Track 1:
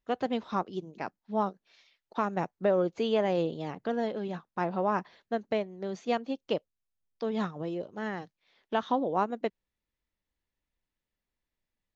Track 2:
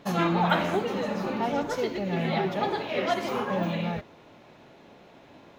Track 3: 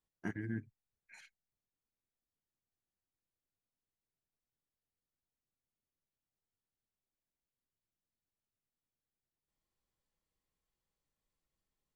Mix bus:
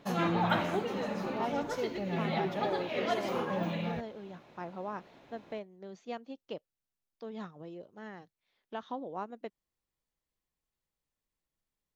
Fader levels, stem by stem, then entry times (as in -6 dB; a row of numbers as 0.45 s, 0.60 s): -11.0 dB, -5.5 dB, -1.5 dB; 0.00 s, 0.00 s, 0.00 s